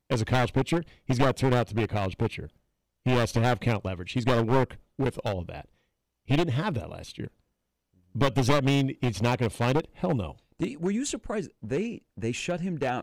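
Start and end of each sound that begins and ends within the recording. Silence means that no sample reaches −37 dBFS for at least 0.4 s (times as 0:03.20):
0:03.06–0:05.61
0:06.29–0:07.27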